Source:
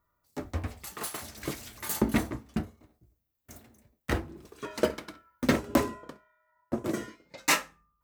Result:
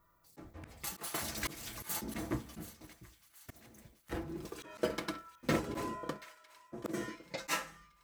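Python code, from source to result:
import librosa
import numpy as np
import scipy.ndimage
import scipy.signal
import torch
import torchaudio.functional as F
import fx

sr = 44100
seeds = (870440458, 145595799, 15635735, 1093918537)

y = x + 0.41 * np.pad(x, (int(6.0 * sr / 1000.0), 0))[:len(x)]
y = fx.auto_swell(y, sr, attack_ms=356.0)
y = fx.echo_wet_highpass(y, sr, ms=731, feedback_pct=51, hz=1500.0, wet_db=-15)
y = y * 10.0 ** (5.5 / 20.0)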